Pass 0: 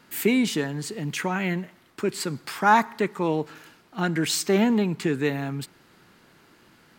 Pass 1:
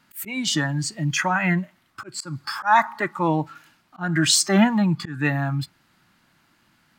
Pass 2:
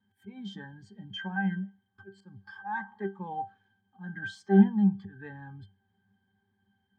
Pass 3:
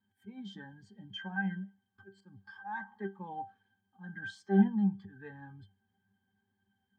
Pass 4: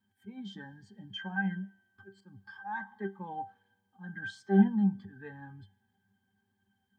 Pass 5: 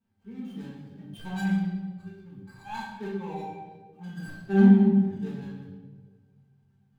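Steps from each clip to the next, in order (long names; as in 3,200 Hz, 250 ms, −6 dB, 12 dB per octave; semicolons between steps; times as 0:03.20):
noise reduction from a noise print of the clip's start 13 dB; parametric band 430 Hz −15 dB 0.56 octaves; volume swells 214 ms; level +8.5 dB
resonances in every octave G, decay 0.21 s; level +2.5 dB
flanger 1.8 Hz, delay 2.9 ms, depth 1.6 ms, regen +65%
tuned comb filter 120 Hz, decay 1.6 s, mix 30%; level +5 dB
running median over 25 samples; convolution reverb RT60 1.5 s, pre-delay 4 ms, DRR −5 dB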